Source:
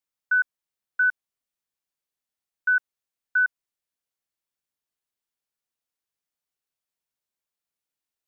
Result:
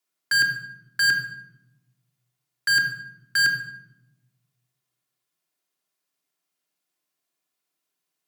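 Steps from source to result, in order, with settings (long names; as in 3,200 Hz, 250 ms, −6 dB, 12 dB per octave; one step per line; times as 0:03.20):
dynamic equaliser 1,400 Hz, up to +3 dB, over −31 dBFS, Q 5.2
tube saturation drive 27 dB, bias 0.25
in parallel at −6.5 dB: log-companded quantiser 2 bits
on the sum: frequency shifter +120 Hz
rectangular room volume 3,300 cubic metres, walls furnished, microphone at 3.2 metres
level +5.5 dB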